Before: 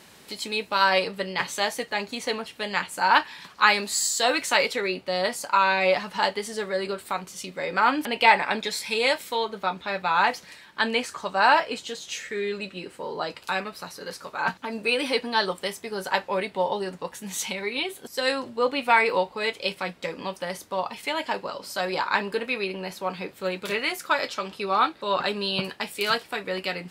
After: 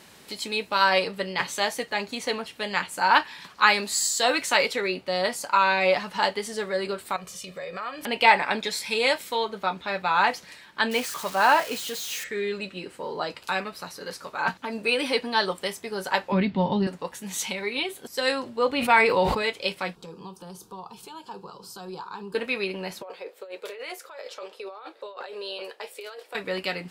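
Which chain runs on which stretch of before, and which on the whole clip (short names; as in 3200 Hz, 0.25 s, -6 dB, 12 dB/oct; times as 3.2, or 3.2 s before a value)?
7.16–8.03 comb 1.7 ms, depth 67% + compressor 2.5:1, threshold -36 dBFS
10.91–12.24 switching spikes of -20 dBFS + high shelf 5500 Hz -12 dB
16.32–16.87 LPF 5200 Hz 24 dB/oct + resonant low shelf 320 Hz +12.5 dB, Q 1.5
18.7–19.42 bell 62 Hz +13 dB 2.2 oct + sustainer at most 41 dB/s
19.95–22.35 low shelf 360 Hz +9 dB + compressor 2:1, threshold -41 dBFS + fixed phaser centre 400 Hz, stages 8
23.02–26.35 ladder high-pass 430 Hz, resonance 65% + negative-ratio compressor -38 dBFS
whole clip: dry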